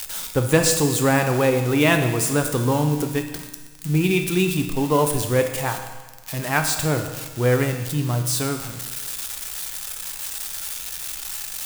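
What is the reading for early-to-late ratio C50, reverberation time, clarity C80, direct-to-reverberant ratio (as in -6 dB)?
7.0 dB, 1.3 s, 9.0 dB, 4.5 dB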